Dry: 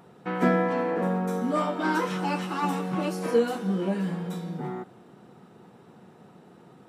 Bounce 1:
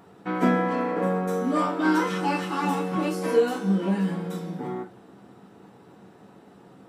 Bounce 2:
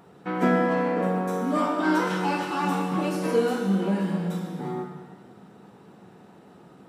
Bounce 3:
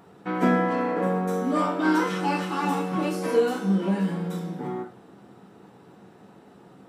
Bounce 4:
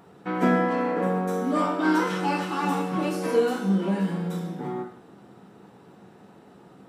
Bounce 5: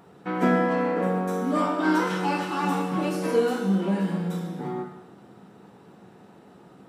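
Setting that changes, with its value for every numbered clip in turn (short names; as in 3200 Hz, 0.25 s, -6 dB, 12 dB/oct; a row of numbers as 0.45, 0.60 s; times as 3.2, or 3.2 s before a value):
non-linear reverb, gate: 80, 530, 140, 210, 320 ms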